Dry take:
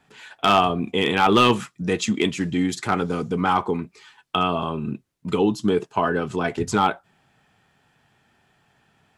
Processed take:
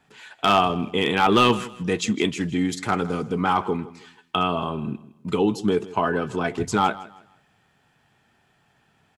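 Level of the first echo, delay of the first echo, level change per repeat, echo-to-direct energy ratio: -18.0 dB, 160 ms, -11.0 dB, -17.5 dB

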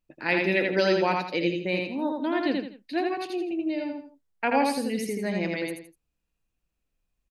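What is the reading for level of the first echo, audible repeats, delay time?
-3.0 dB, 3, 82 ms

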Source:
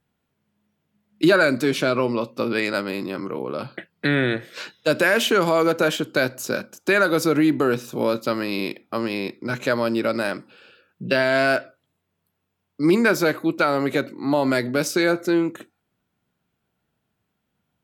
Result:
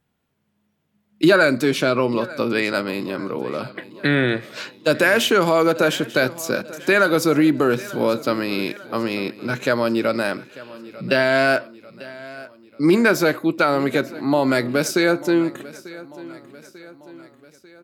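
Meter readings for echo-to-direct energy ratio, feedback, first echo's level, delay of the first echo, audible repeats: -17.5 dB, 53%, -19.0 dB, 893 ms, 3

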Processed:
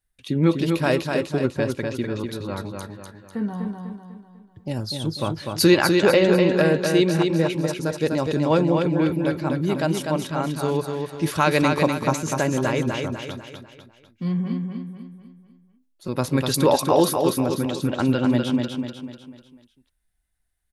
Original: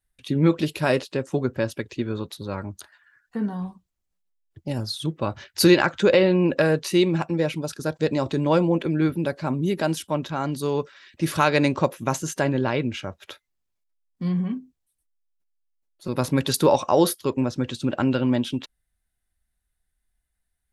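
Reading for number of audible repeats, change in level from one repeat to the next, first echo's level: 5, -7.0 dB, -4.5 dB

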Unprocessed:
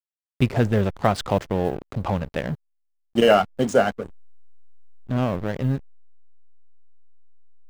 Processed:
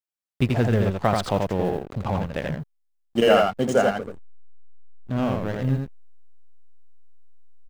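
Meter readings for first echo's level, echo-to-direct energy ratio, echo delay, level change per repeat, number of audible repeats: -3.5 dB, -3.5 dB, 84 ms, no regular repeats, 1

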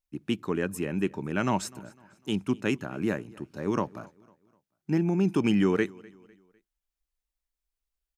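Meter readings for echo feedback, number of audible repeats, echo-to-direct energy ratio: 41%, 2, -23.0 dB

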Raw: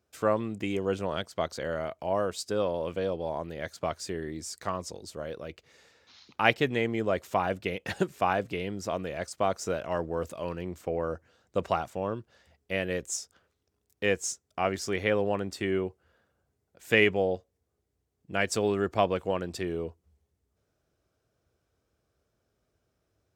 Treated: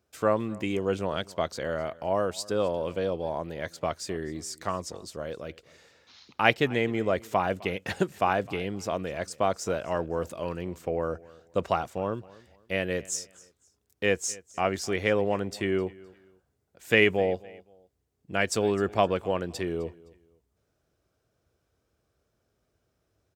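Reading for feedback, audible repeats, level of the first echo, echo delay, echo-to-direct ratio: 30%, 2, -22.0 dB, 258 ms, -21.5 dB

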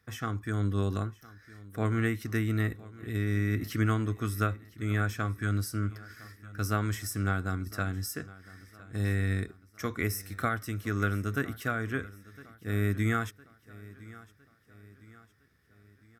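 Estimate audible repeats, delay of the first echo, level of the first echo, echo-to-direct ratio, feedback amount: 3, 1009 ms, -20.0 dB, -19.0 dB, 48%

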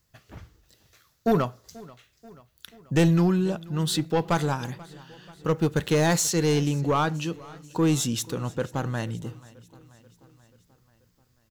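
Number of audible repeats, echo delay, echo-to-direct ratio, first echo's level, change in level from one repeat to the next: 3, 485 ms, -20.0 dB, -22.0 dB, -4.5 dB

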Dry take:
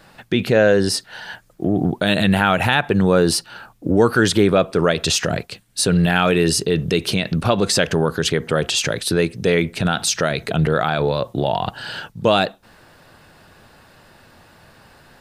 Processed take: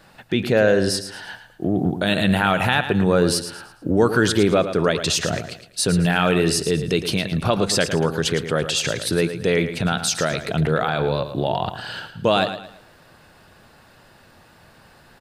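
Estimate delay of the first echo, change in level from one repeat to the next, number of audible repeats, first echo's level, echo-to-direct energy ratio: 111 ms, -9.5 dB, 3, -10.5 dB, -10.0 dB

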